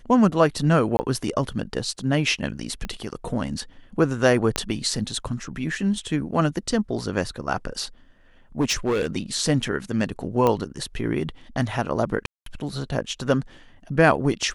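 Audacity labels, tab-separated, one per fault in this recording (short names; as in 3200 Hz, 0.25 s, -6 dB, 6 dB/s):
0.970000	0.990000	gap 20 ms
2.850000	2.850000	pop -17 dBFS
4.560000	4.560000	pop -6 dBFS
8.600000	9.070000	clipped -17.5 dBFS
10.470000	10.470000	pop -9 dBFS
12.260000	12.460000	gap 0.203 s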